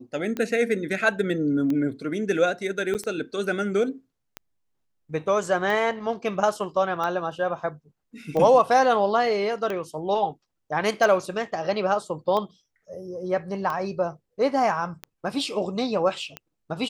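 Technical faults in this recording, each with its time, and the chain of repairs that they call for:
scratch tick 45 rpm −17 dBFS
0:02.94–0:02.95: drop-out 9 ms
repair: click removal
repair the gap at 0:02.94, 9 ms

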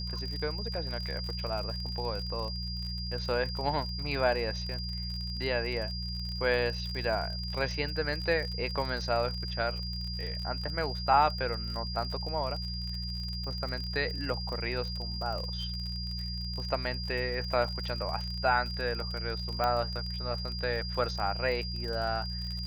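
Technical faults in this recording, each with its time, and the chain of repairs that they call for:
surface crackle 47 per second −36 dBFS
mains hum 60 Hz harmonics 3 −37 dBFS
whistle 4,800 Hz −38 dBFS
0:19.64: click −17 dBFS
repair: click removal
notch filter 4,800 Hz, Q 30
hum removal 60 Hz, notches 3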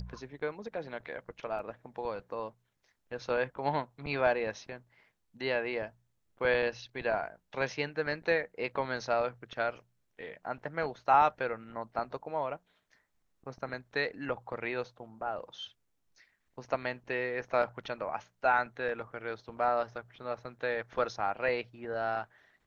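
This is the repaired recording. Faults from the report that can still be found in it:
0:19.64: click

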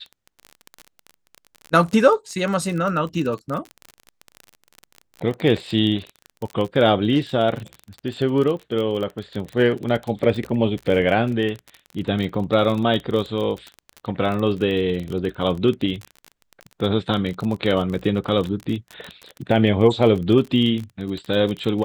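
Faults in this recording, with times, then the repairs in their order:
surface crackle 31 per second −26 dBFS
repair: click removal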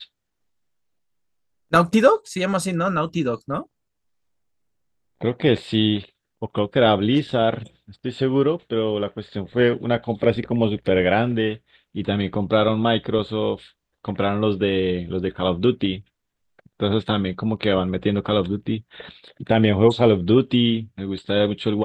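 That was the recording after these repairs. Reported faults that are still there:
none of them is left

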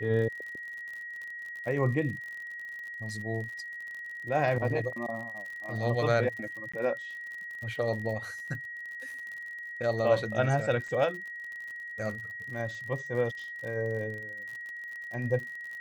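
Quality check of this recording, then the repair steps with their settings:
surface crackle 52 per second −38 dBFS
whistle 1,900 Hz −38 dBFS
0:06.72–0:06.74: drop-out 15 ms
0:10.88: drop-out 5 ms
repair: click removal
notch filter 1,900 Hz, Q 30
repair the gap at 0:06.72, 15 ms
repair the gap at 0:10.88, 5 ms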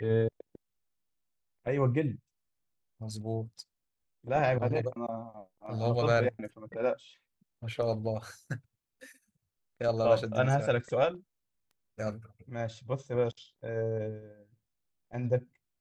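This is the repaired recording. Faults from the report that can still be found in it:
none of them is left

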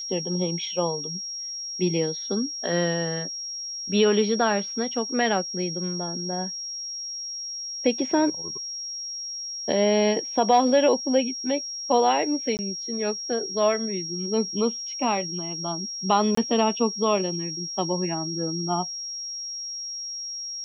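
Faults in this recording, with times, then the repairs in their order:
whistle 5,600 Hz −31 dBFS
0:12.57–0:12.59: drop-out 19 ms
0:16.35–0:16.37: drop-out 24 ms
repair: notch filter 5,600 Hz, Q 30
repair the gap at 0:12.57, 19 ms
repair the gap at 0:16.35, 24 ms

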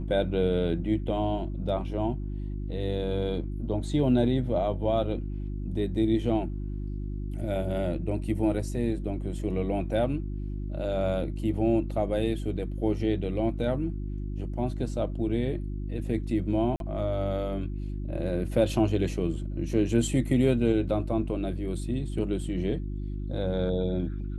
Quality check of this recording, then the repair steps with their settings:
mains hum 50 Hz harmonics 7 −33 dBFS
0:16.76–0:16.80: drop-out 42 ms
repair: hum removal 50 Hz, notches 7
repair the gap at 0:16.76, 42 ms

